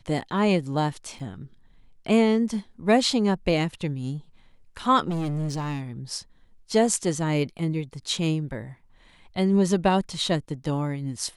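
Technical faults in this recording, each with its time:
1.19–1.20 s: dropout 6.1 ms
5.09–5.83 s: clipped -25 dBFS

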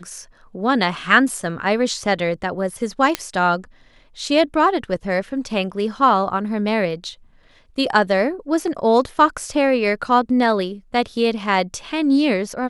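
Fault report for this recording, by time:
3.15 s: pop -4 dBFS

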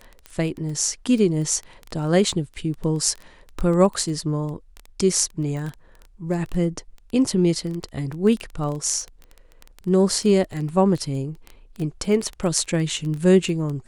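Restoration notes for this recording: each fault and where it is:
crackle 11 per s -26 dBFS

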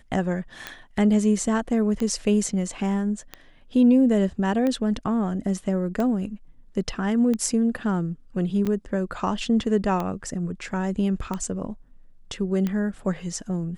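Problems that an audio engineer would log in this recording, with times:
tick 45 rpm -15 dBFS
8.65–8.66 s: dropout 6.3 ms

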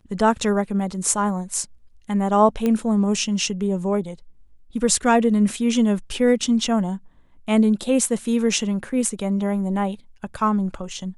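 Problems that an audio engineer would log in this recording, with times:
2.66 s: pop -11 dBFS

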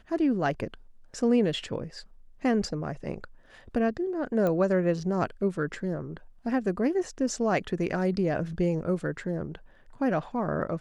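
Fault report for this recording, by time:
4.47 s: pop -17 dBFS

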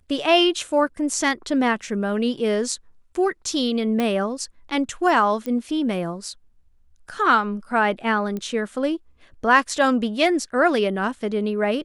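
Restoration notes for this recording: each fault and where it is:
4.00 s: pop -11 dBFS
5.46 s: pop -17 dBFS
8.37 s: pop -18 dBFS

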